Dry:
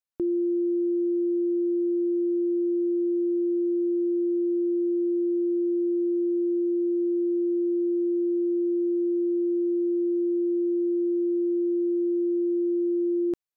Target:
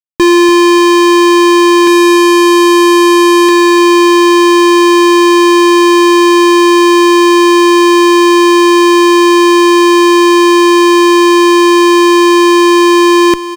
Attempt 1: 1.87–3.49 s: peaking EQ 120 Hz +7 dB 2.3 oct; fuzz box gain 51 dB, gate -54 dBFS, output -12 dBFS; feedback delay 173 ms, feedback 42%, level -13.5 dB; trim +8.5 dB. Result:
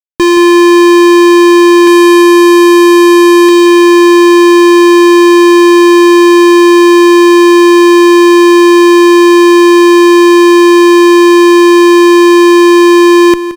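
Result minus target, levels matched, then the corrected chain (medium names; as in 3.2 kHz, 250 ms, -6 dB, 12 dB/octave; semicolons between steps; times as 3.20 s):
echo 119 ms early
1.87–3.49 s: peaking EQ 120 Hz +7 dB 2.3 oct; fuzz box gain 51 dB, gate -54 dBFS, output -12 dBFS; feedback delay 292 ms, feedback 42%, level -13.5 dB; trim +8.5 dB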